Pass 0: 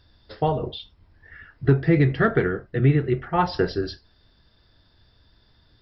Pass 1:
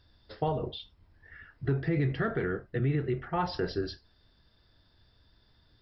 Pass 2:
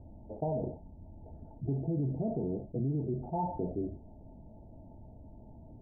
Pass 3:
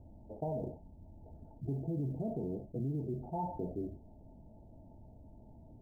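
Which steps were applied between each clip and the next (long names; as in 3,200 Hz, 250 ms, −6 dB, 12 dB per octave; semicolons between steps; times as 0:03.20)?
brickwall limiter −15 dBFS, peak gain reduction 7 dB; level −5.5 dB
Chebyshev low-pass with heavy ripple 910 Hz, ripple 9 dB; envelope flattener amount 50%
floating-point word with a short mantissa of 6 bits; level −4 dB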